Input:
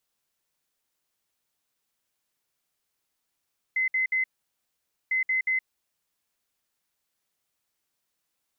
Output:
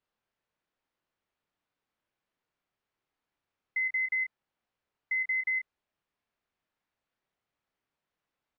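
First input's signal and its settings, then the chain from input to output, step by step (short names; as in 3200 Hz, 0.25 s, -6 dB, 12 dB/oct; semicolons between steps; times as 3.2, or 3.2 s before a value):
beep pattern sine 2050 Hz, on 0.12 s, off 0.06 s, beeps 3, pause 0.87 s, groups 2, -22 dBFS
Bessel low-pass 2000 Hz, order 2; doubler 27 ms -8 dB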